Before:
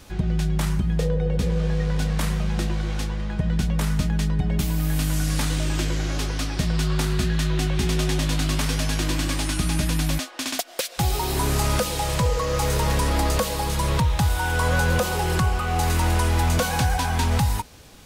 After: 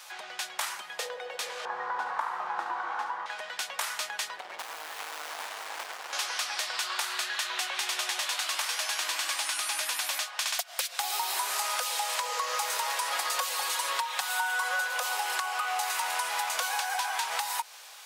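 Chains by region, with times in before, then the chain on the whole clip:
1.65–3.26 EQ curve 100 Hz 0 dB, 250 Hz +11 dB, 410 Hz +5 dB, 600 Hz -2 dB, 880 Hz +11 dB, 1500 Hz +2 dB, 2400 Hz -12 dB, 11000 Hz -23 dB + flutter echo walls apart 12 m, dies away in 0.45 s
4.37–6.13 HPF 55 Hz + running maximum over 65 samples
13.12–14.88 bell 68 Hz +12 dB 2 oct + comb 5.5 ms, depth 87%
whole clip: HPF 770 Hz 24 dB/oct; compressor, threshold -31 dBFS; gain +3.5 dB

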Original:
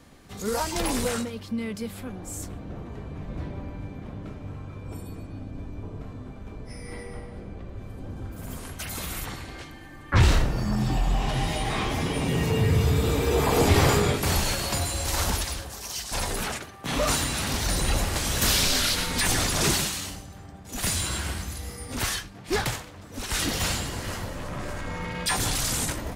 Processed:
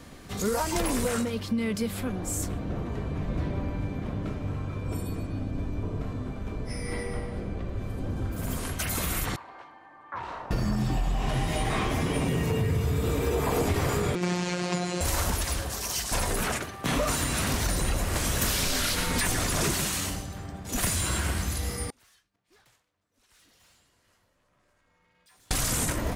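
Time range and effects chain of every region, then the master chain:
9.36–10.51 band-pass 930 Hz, Q 3.2 + compressor 2:1, threshold -43 dBFS
14.15–15.01 robotiser 178 Hz + speaker cabinet 130–6900 Hz, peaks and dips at 170 Hz +7 dB, 360 Hz +6 dB, 2300 Hz +3 dB
21.9–25.51 low shelf 420 Hz -8 dB + overloaded stage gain 25.5 dB + flipped gate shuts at -40 dBFS, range -37 dB
whole clip: notch 830 Hz, Q 16; dynamic EQ 4100 Hz, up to -5 dB, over -42 dBFS, Q 1; compressor, threshold -29 dBFS; gain +5.5 dB

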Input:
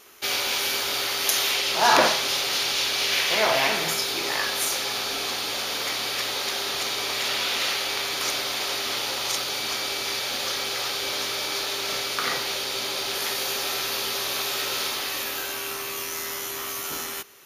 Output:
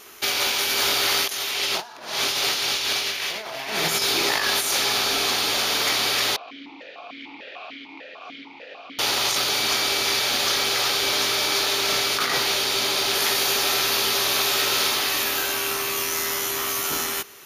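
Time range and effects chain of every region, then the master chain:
6.36–8.99 ring modulator 120 Hz + air absorption 180 m + vowel sequencer 6.7 Hz
whole clip: notch 530 Hz, Q 16; negative-ratio compressor -27 dBFS, ratio -0.5; gain +4.5 dB

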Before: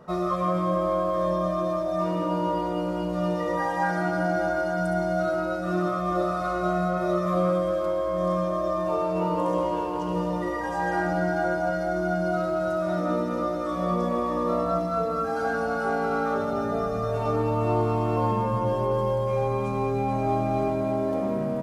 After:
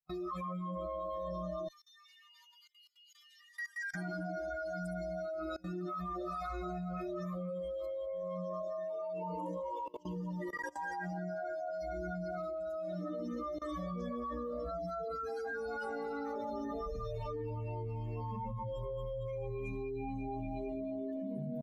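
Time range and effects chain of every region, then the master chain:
1.68–3.95 HPF 1400 Hz 24 dB/oct + feedback echo 0.187 s, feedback 41%, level -6 dB
7.89–11.82 low shelf 69 Hz -3.5 dB + echo 0.177 s -7 dB
whole clip: per-bin expansion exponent 3; low shelf 77 Hz +11.5 dB; level quantiser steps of 23 dB; gain +7 dB

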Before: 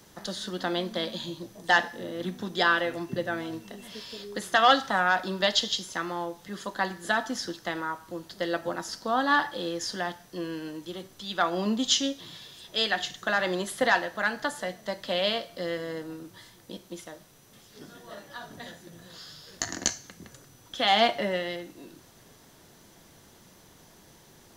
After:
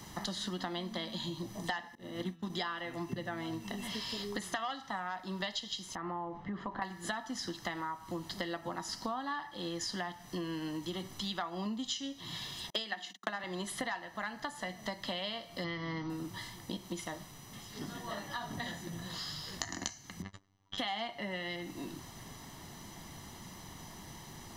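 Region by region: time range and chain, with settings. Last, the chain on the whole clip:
1.95–2.5 expander -31 dBFS + de-hum 165.9 Hz, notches 32
5.95–6.82 LPF 1400 Hz + compressor 3:1, threshold -38 dBFS
12.7–13.44 gate -42 dBFS, range -39 dB + elliptic high-pass 190 Hz + transient shaper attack +11 dB, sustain +3 dB
15.64–16.1 brick-wall FIR low-pass 6400 Hz + comb 0.9 ms, depth 55%
20.22–20.78 gate -50 dBFS, range -22 dB + robotiser 97.1 Hz + air absorption 140 m
whole clip: high shelf 6500 Hz -4.5 dB; comb 1 ms, depth 55%; compressor 10:1, threshold -40 dBFS; gain +5 dB

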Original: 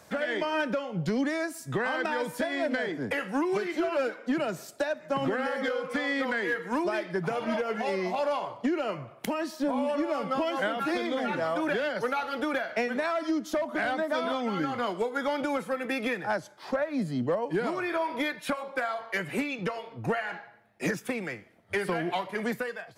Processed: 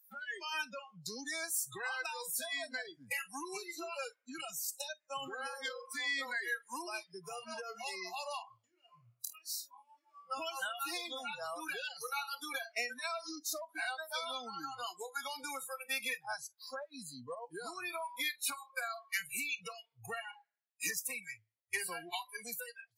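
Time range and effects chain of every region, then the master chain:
8.42–10.3 compressor 12:1, threshold -36 dBFS + flutter echo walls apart 4.3 m, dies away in 0.26 s
whole clip: differentiator; spectral noise reduction 30 dB; bell 110 Hz +15 dB 0.29 oct; gain +7.5 dB

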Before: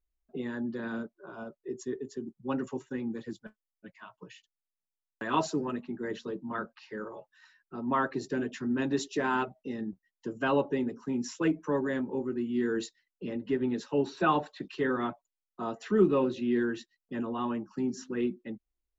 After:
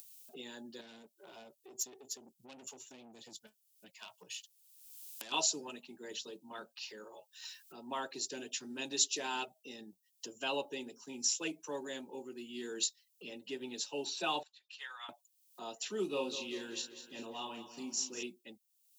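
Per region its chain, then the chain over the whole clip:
0.81–5.32 compressor 2:1, threshold -39 dBFS + low shelf 140 Hz +9.5 dB + tube stage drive 38 dB, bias 0.4
14.43–15.09 HPF 1100 Hz 24 dB/oct + high shelf 2800 Hz -11 dB + upward expander, over -56 dBFS
16.09–18.23 bell 1600 Hz -4.5 dB 0.32 oct + doubler 35 ms -5 dB + feedback echo 0.195 s, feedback 52%, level -12 dB
whole clip: band shelf 1500 Hz -11.5 dB 1.2 oct; upward compressor, threshold -39 dBFS; differentiator; gain +12.5 dB

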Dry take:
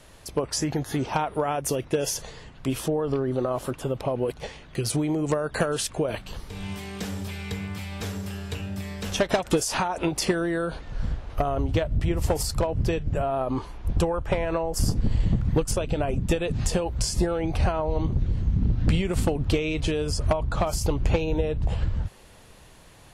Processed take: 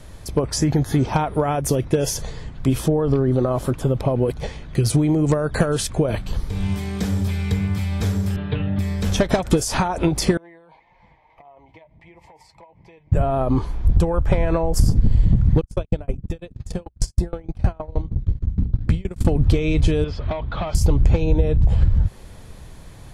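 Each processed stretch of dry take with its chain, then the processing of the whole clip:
8.36–8.79 elliptic low-pass 3600 Hz, stop band 50 dB + comb 6.7 ms, depth 95%
10.37–13.12 double band-pass 1400 Hz, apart 1.2 oct + compressor 4:1, threshold -45 dBFS + flange 1.7 Hz, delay 5.5 ms, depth 1.1 ms, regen +48%
15.61–19.25 notches 50/100/150/200 Hz + gate -26 dBFS, range -38 dB + dB-ramp tremolo decaying 6.4 Hz, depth 27 dB
20.04–20.75 overdrive pedal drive 16 dB, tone 2700 Hz, clips at -14.5 dBFS + ladder low-pass 4000 Hz, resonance 50%
whole clip: low shelf 240 Hz +11.5 dB; notch 2800 Hz, Q 12; compressor 3:1, threshold -15 dBFS; gain +3 dB

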